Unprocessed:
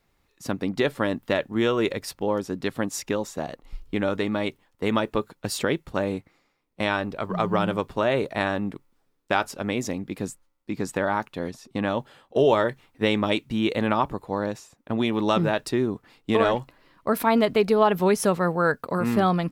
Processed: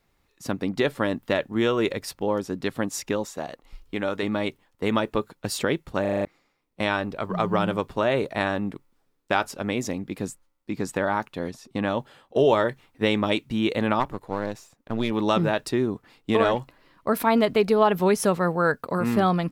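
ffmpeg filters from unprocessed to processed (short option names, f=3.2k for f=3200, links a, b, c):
-filter_complex "[0:a]asettb=1/sr,asplit=3[a][b][c];[a]atrim=end=3.254[d];[b]atrim=start=3.25:end=4.23,asetpts=PTS-STARTPTS,afade=t=in:d=0.004:c=qsin,afade=t=out:st=0.976:d=0.004:c=qsin,lowshelf=f=300:g=-7[e];[c]atrim=start=4.226[f];[d][e]acrossfade=d=0.004:c1=hsin:c2=qsin[g];[g][f]acrossfade=d=0.004:c1=qsin:c2=hsin,asplit=3[h][i][j];[h]afade=t=out:st=13.99:d=0.02[k];[i]aeval=exprs='if(lt(val(0),0),0.447*val(0),val(0))':c=same,afade=t=in:st=13.99:d=0.02,afade=t=out:st=15.1:d=0.02[l];[j]afade=t=in:st=15.1:d=0.02[m];[k][l][m]amix=inputs=3:normalize=0,asplit=7[n][o][p][q][r][s][t];[n]atrim=end=6.052[u];[o]atrim=start=6.008:end=6.052[v];[p]atrim=start=6.008:end=6.052[w];[q]atrim=start=6.008:end=6.052[x];[r]atrim=start=6.008:end=6.052[y];[s]atrim=start=6.008:end=6.052[z];[t]atrim=start=6.248[aa];[u][v]acrossfade=d=0.004:c1=hsin:c2=hsin[ab];[ab][w]acrossfade=d=0.004:c1=hsin:c2=hsin[ac];[ac][x]acrossfade=d=0.004:c1=hsin:c2=hsin[ad];[ad][y]acrossfade=d=0.004:c1=hsin:c2=hsin[ae];[ae][z]acrossfade=d=0.004:c1=hsin:c2=hsin[af];[af][aa]acrossfade=d=0.004:c1=hsin:c2=hsin"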